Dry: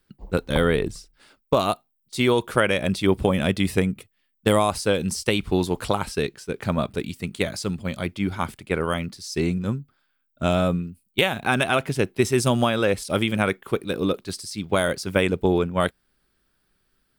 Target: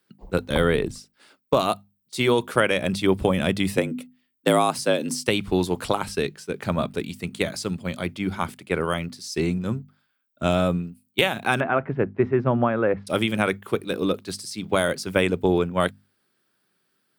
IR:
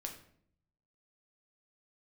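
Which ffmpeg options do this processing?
-filter_complex "[0:a]asettb=1/sr,asplit=3[a][b][c];[a]atrim=end=3.774[d];[b]atrim=start=3.77:end=5.13,asetpts=PTS-STARTPTS,afade=t=in:d=0.004:c=qsin,afade=t=out:st=1.356:d=0.004:c=qsin,afreqshift=62[e];[c]atrim=start=5.126[f];[d][e]acrossfade=d=0.004:c1=hsin:c2=qsin[g];[g][f]acrossfade=d=0.004:c1=qsin:c2=hsin,asettb=1/sr,asplit=3[h][i][j];[h]atrim=end=11.604[k];[i]atrim=start=11.6:end=13.07,asetpts=PTS-STARTPTS,afade=t=in:d=0.004:c=qsin,afade=t=out:st=1.466:d=0.004:c=qsin,lowpass=f=1.8k:w=0.5412,lowpass=f=1.8k:w=1.3066[l];[j]atrim=start=13.066[m];[k][l]acrossfade=d=0.004:c1=hsin:c2=qsin[n];[n][m]acrossfade=d=0.004:c1=qsin:c2=hsin,acrossover=split=120[o][p];[o]aeval=exprs='sgn(val(0))*max(abs(val(0))-0.00531,0)':c=same[q];[q][p]amix=inputs=2:normalize=0,bandreject=f=50:t=h:w=6,bandreject=f=100:t=h:w=6,bandreject=f=150:t=h:w=6,bandreject=f=200:t=h:w=6,bandreject=f=250:t=h:w=6"

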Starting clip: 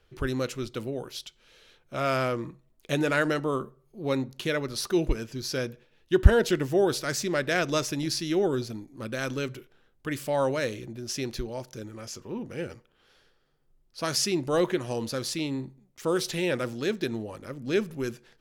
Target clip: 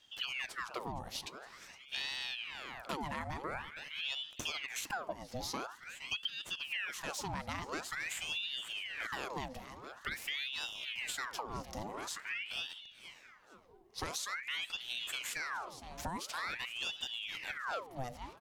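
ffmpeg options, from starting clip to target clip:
-filter_complex "[0:a]asplit=5[a][b][c][d][e];[b]adelay=464,afreqshift=48,volume=-19dB[f];[c]adelay=928,afreqshift=96,volume=-25.6dB[g];[d]adelay=1392,afreqshift=144,volume=-32.1dB[h];[e]adelay=1856,afreqshift=192,volume=-38.7dB[i];[a][f][g][h][i]amix=inputs=5:normalize=0,acompressor=threshold=-36dB:ratio=10,aeval=exprs='val(0)*sin(2*PI*1800*n/s+1800*0.8/0.47*sin(2*PI*0.47*n/s))':c=same,volume=2dB"

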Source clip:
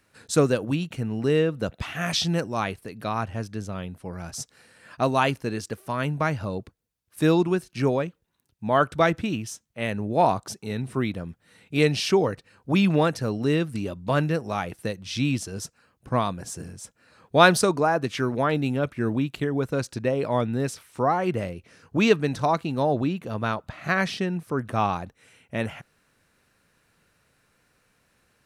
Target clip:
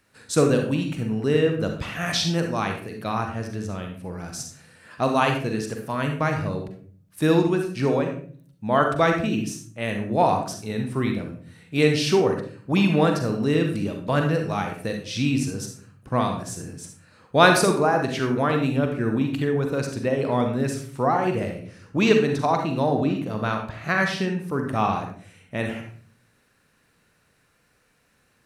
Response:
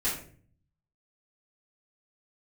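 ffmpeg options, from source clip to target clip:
-filter_complex "[0:a]asplit=2[a][b];[b]highpass=100[c];[1:a]atrim=start_sample=2205,adelay=38[d];[c][d]afir=irnorm=-1:irlink=0,volume=-11dB[e];[a][e]amix=inputs=2:normalize=0"

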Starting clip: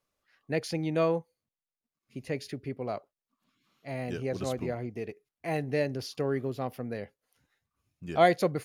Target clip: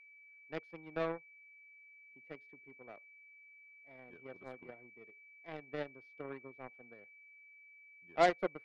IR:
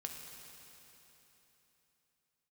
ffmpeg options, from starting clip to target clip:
-filter_complex "[0:a]acrossover=split=210 2800:gain=0.2 1 0.0708[a][b][c];[a][b][c]amix=inputs=3:normalize=0,aeval=exprs='0.299*(cos(1*acos(clip(val(0)/0.299,-1,1)))-cos(1*PI/2))+0.0376*(cos(7*acos(clip(val(0)/0.299,-1,1)))-cos(7*PI/2))':c=same,aeval=exprs='val(0)+0.00282*sin(2*PI*2300*n/s)':c=same,volume=-6dB"

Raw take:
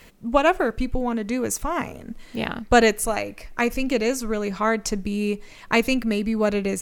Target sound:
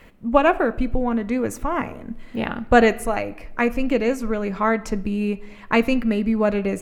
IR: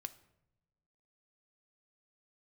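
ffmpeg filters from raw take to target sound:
-filter_complex "[0:a]asplit=2[a][b];[1:a]atrim=start_sample=2205,lowpass=2.9k[c];[b][c]afir=irnorm=-1:irlink=0,volume=10.5dB[d];[a][d]amix=inputs=2:normalize=0,volume=-8dB"

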